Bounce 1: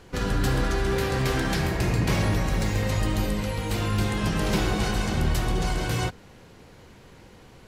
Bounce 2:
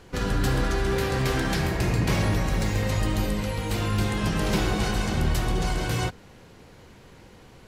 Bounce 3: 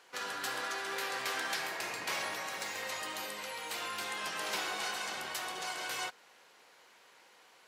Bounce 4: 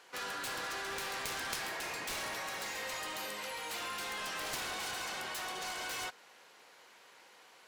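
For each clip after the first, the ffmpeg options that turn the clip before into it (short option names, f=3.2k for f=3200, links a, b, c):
-af anull
-af "highpass=820,volume=-4.5dB"
-af "aeval=exprs='0.0944*(cos(1*acos(clip(val(0)/0.0944,-1,1)))-cos(1*PI/2))+0.0376*(cos(3*acos(clip(val(0)/0.0944,-1,1)))-cos(3*PI/2))+0.00668*(cos(7*acos(clip(val(0)/0.0944,-1,1)))-cos(7*PI/2))':c=same,volume=5dB"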